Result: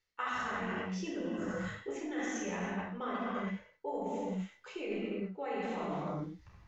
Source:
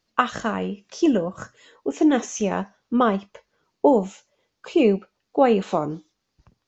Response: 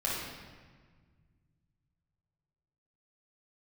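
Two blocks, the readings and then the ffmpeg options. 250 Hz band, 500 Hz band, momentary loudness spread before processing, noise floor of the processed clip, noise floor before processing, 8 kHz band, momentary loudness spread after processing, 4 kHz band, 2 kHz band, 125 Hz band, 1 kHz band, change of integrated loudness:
-15.0 dB, -16.5 dB, 13 LU, -67 dBFS, -77 dBFS, no reading, 5 LU, -11.5 dB, -7.5 dB, -9.0 dB, -13.5 dB, -15.5 dB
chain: -filter_complex "[0:a]equalizer=f=350:w=0.42:g=-6[s0];[1:a]atrim=start_sample=2205,afade=t=out:st=0.34:d=0.01,atrim=end_sample=15435,asetrate=32193,aresample=44100[s1];[s0][s1]afir=irnorm=-1:irlink=0,areverse,acompressor=threshold=0.0398:ratio=10,areverse,equalizer=f=2000:w=4.4:g=11,volume=0.473"

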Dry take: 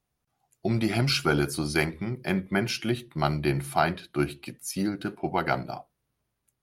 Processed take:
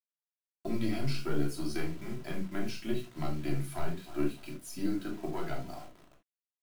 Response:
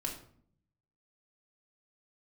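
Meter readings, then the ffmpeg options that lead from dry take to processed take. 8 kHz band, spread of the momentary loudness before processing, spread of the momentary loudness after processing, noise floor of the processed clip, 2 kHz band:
-10.5 dB, 9 LU, 9 LU, under -85 dBFS, -14.0 dB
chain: -filter_complex "[0:a]aeval=exprs='(tanh(5.01*val(0)+0.65)-tanh(0.65))/5.01':c=same,agate=range=0.447:threshold=0.002:ratio=16:detection=peak,asplit=2[s0][s1];[s1]adelay=301,lowpass=f=820:p=1,volume=0.119,asplit=2[s2][s3];[s3]adelay=301,lowpass=f=820:p=1,volume=0.47,asplit=2[s4][s5];[s5]adelay=301,lowpass=f=820:p=1,volume=0.47,asplit=2[s6][s7];[s7]adelay=301,lowpass=f=820:p=1,volume=0.47[s8];[s0][s2][s4][s6][s8]amix=inputs=5:normalize=0,aeval=exprs='val(0)+0.000562*(sin(2*PI*50*n/s)+sin(2*PI*2*50*n/s)/2+sin(2*PI*3*50*n/s)/3+sin(2*PI*4*50*n/s)/4+sin(2*PI*5*50*n/s)/5)':c=same,flanger=delay=3.7:depth=1.2:regen=-66:speed=1.2:shape=sinusoidal,acrossover=split=500[s9][s10];[s10]acompressor=threshold=0.00708:ratio=3[s11];[s9][s11]amix=inputs=2:normalize=0,bandreject=f=60:t=h:w=6,bandreject=f=120:t=h:w=6,bandreject=f=180:t=h:w=6,bandreject=f=240:t=h:w=6,adynamicequalizer=threshold=0.00501:dfrequency=220:dqfactor=1:tfrequency=220:tqfactor=1:attack=5:release=100:ratio=0.375:range=2:mode=cutabove:tftype=bell,acrusher=bits=8:mix=0:aa=0.000001[s12];[1:a]atrim=start_sample=2205,atrim=end_sample=3969[s13];[s12][s13]afir=irnorm=-1:irlink=0"

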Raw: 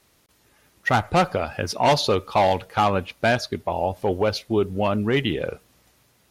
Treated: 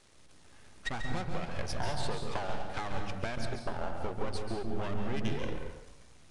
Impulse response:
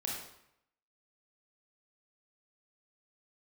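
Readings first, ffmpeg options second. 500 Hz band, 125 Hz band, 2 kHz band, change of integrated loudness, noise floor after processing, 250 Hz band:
-16.5 dB, -10.5 dB, -13.5 dB, -15.0 dB, -55 dBFS, -13.0 dB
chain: -filter_complex "[0:a]aeval=exprs='max(val(0),0)':c=same,acompressor=threshold=0.0158:ratio=8,asplit=2[s0][s1];[1:a]atrim=start_sample=2205,lowshelf=f=220:g=11.5,adelay=139[s2];[s1][s2]afir=irnorm=-1:irlink=0,volume=0.473[s3];[s0][s3]amix=inputs=2:normalize=0,aresample=22050,aresample=44100,volume=1.41"

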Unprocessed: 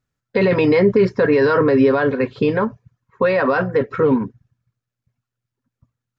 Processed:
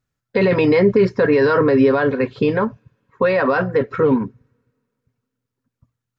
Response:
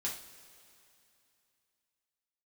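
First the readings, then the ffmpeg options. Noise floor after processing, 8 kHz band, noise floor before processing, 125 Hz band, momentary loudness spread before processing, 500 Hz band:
-82 dBFS, no reading, -84 dBFS, 0.0 dB, 7 LU, 0.0 dB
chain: -filter_complex "[0:a]asplit=2[s0][s1];[s1]equalizer=f=510:w=0.31:g=-14.5[s2];[1:a]atrim=start_sample=2205[s3];[s2][s3]afir=irnorm=-1:irlink=0,volume=0.0708[s4];[s0][s4]amix=inputs=2:normalize=0"

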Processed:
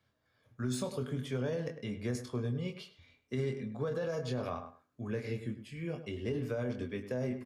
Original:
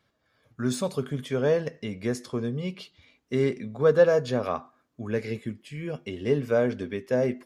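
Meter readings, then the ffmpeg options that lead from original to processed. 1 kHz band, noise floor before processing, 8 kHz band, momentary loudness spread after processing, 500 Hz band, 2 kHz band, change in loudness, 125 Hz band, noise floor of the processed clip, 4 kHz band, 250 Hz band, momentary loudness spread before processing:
-10.5 dB, -73 dBFS, no reading, 6 LU, -12.5 dB, -10.5 dB, -10.0 dB, -4.5 dB, -77 dBFS, -7.0 dB, -7.5 dB, 14 LU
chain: -filter_complex "[0:a]equalizer=f=99:w=2.4:g=6.5,asplit=2[s0][s1];[s1]adelay=24,volume=0.501[s2];[s0][s2]amix=inputs=2:normalize=0,alimiter=limit=0.141:level=0:latency=1:release=21,asplit=2[s3][s4];[s4]adelay=103,lowpass=f=2500:p=1,volume=0.282,asplit=2[s5][s6];[s6]adelay=103,lowpass=f=2500:p=1,volume=0.18[s7];[s5][s7]amix=inputs=2:normalize=0[s8];[s3][s8]amix=inputs=2:normalize=0,acrossover=split=190|3000[s9][s10][s11];[s10]acompressor=threshold=0.0501:ratio=6[s12];[s9][s12][s11]amix=inputs=3:normalize=0,volume=0.447"

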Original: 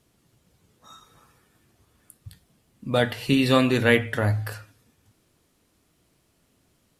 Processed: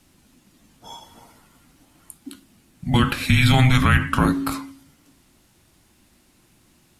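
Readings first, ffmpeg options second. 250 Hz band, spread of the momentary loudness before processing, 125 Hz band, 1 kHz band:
+2.5 dB, 11 LU, +8.0 dB, +6.5 dB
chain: -af "equalizer=f=77:t=o:w=1.2:g=-5.5,bandreject=f=53.76:t=h:w=4,bandreject=f=107.52:t=h:w=4,bandreject=f=161.28:t=h:w=4,bandreject=f=215.04:t=h:w=4,bandreject=f=268.8:t=h:w=4,afreqshift=-380,alimiter=level_in=5.31:limit=0.891:release=50:level=0:latency=1,volume=0.531"

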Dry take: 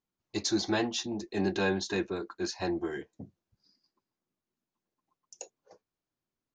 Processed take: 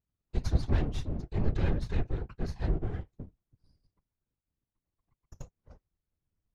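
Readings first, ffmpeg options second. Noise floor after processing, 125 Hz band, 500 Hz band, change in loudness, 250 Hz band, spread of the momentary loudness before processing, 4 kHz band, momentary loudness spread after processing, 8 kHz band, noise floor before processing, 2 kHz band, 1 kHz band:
under -85 dBFS, +10.0 dB, -7.5 dB, -1.5 dB, -5.5 dB, 19 LU, -14.0 dB, 21 LU, under -15 dB, under -85 dBFS, -11.0 dB, -7.0 dB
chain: -filter_complex "[0:a]aeval=exprs='max(val(0),0)':c=same,asplit=2[s0][s1];[s1]acompressor=threshold=0.00501:ratio=6,volume=0.708[s2];[s0][s2]amix=inputs=2:normalize=0,aemphasis=mode=reproduction:type=bsi,afftfilt=real='hypot(re,im)*cos(2*PI*random(0))':imag='hypot(re,im)*sin(2*PI*random(1))':win_size=512:overlap=0.75"

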